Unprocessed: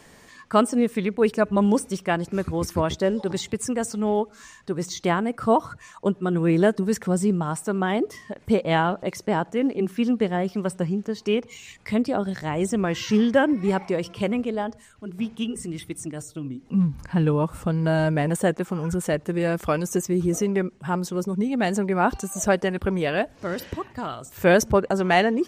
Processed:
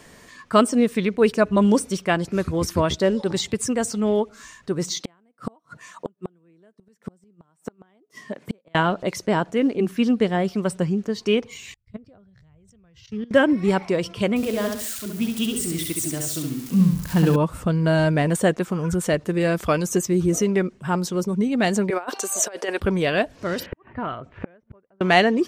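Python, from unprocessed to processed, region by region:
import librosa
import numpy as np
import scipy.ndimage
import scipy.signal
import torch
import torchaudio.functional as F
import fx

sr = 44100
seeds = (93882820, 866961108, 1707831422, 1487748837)

y = fx.chain(x, sr, fx.highpass(hz=140.0, slope=24),
    fx.gate_flip(shuts_db=-17.0, range_db=-39), at=(4.9, 8.75))
y = fx.chain(y, sr, fx.curve_eq(hz=(110.0, 290.0, 470.0, 940.0, 1300.0, 4700.0, 11000.0), db=(0, -20, -15, -20, -17, -17, -26)),
    fx.level_steps(step_db=17),
    fx.band_widen(depth_pct=70), at=(11.74, 13.31))
y = fx.chain(y, sr, fx.crossing_spikes(level_db=-28.5),
    fx.echo_feedback(ms=68, feedback_pct=37, wet_db=-4.0), at=(14.36, 17.36))
y = fx.chain(y, sr, fx.highpass(hz=370.0, slope=24),
    fx.over_compress(threshold_db=-27.0, ratio=-0.5), at=(21.9, 22.8))
y = fx.chain(y, sr, fx.lowpass(hz=2500.0, slope=24),
    fx.gate_flip(shuts_db=-18.0, range_db=-39), at=(23.66, 25.01))
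y = fx.notch(y, sr, hz=820.0, q=12.0)
y = fx.dynamic_eq(y, sr, hz=4200.0, q=1.0, threshold_db=-44.0, ratio=4.0, max_db=4)
y = F.gain(torch.from_numpy(y), 2.5).numpy()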